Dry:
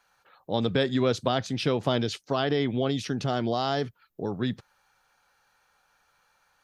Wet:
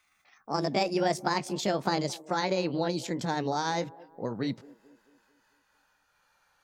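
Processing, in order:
pitch glide at a constant tempo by +7 semitones ending unshifted
delay with a band-pass on its return 221 ms, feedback 48%, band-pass 490 Hz, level −19.5 dB
level −1.5 dB

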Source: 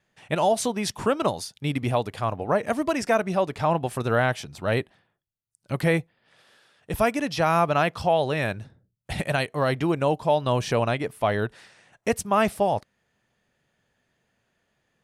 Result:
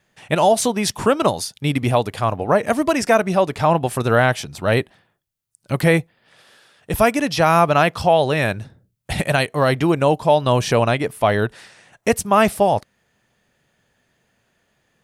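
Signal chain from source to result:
de-essing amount 45%
high-shelf EQ 7,400 Hz +4.5 dB
level +6.5 dB

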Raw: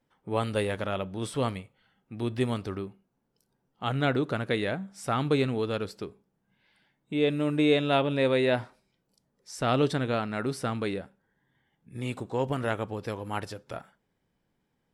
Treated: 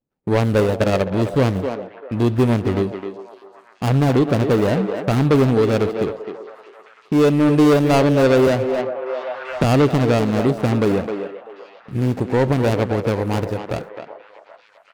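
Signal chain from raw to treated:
running median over 41 samples
noise gate −52 dBFS, range −24 dB
far-end echo of a speakerphone 260 ms, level −8 dB
0:00.58–0:01.11: transient designer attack +12 dB, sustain −7 dB
in parallel at −1 dB: downward compressor, threshold −35 dBFS, peak gain reduction 15 dB
on the sum: sine wavefolder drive 8 dB, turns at −9.5 dBFS
on a send: echo through a band-pass that steps 388 ms, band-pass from 530 Hz, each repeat 0.7 octaves, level −11.5 dB
0:08.47–0:09.64: on the sum: multiband upward and downward compressor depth 70%

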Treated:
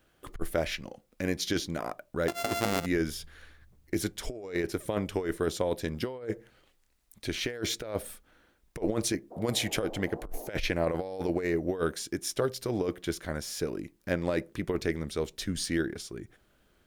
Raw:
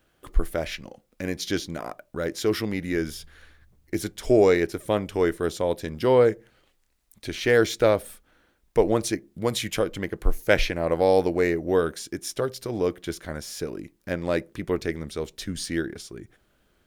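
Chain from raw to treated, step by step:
0:02.28–0:02.86: samples sorted by size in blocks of 64 samples
0:09.30–0:10.59: noise in a band 260–760 Hz −43 dBFS
compressor whose output falls as the input rises −24 dBFS, ratio −0.5
level −4 dB

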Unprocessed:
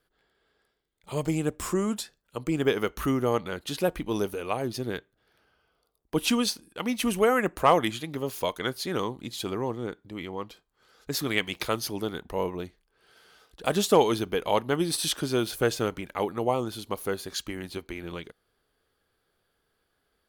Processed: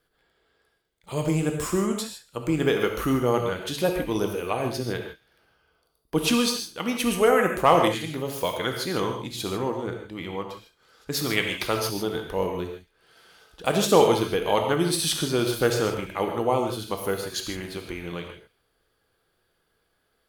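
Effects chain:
delay with a high-pass on its return 68 ms, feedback 49%, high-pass 2,400 Hz, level −17 dB
reverb whose tail is shaped and stops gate 180 ms flat, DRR 3 dB
level +1.5 dB

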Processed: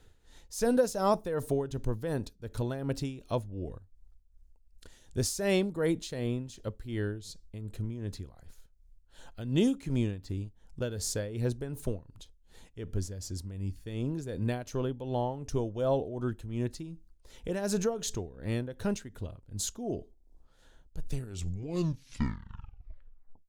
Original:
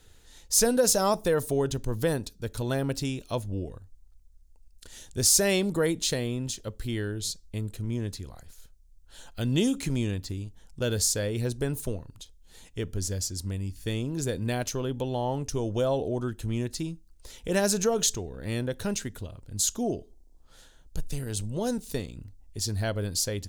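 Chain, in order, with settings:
turntable brake at the end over 2.40 s
high-shelf EQ 2,700 Hz −9.5 dB
amplitude tremolo 2.7 Hz, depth 68%

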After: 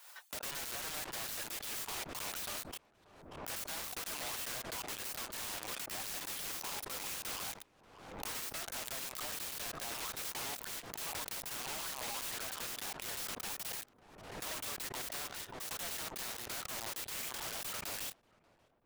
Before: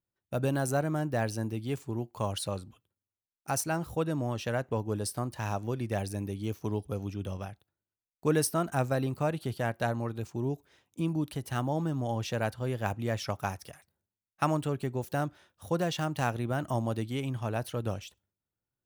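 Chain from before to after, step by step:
phase distortion by the signal itself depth 0.22 ms
inverse Chebyshev high-pass filter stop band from 170 Hz, stop band 70 dB
reverb reduction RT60 1.1 s
reversed playback
downward compressor 8 to 1, threshold −51 dBFS, peak gain reduction 25 dB
reversed playback
leveller curve on the samples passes 5
wrap-around overflow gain 48.5 dB
on a send: feedback echo with a low-pass in the loop 585 ms, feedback 75%, low-pass 1,000 Hz, level −21 dB
on the sum: background raised ahead of every attack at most 53 dB per second
level +12.5 dB

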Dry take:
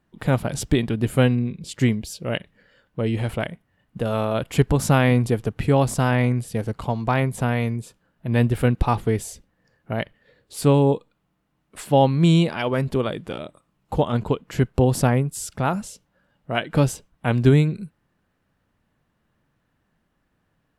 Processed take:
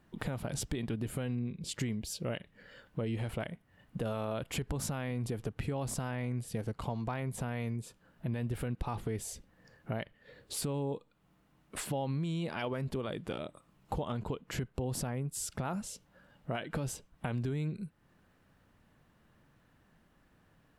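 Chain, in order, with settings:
brickwall limiter −15.5 dBFS, peak gain reduction 12 dB
downward compressor 2.5 to 1, threshold −43 dBFS, peak gain reduction 15 dB
level +3.5 dB

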